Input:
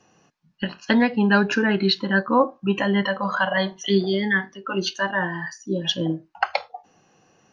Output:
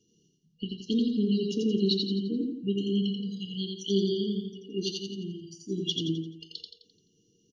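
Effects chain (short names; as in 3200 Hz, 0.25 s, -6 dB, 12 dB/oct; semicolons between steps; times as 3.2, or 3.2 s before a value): FFT band-reject 480–2800 Hz; on a send: feedback echo 86 ms, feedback 43%, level -3 dB; on the sum: gain -7.5 dB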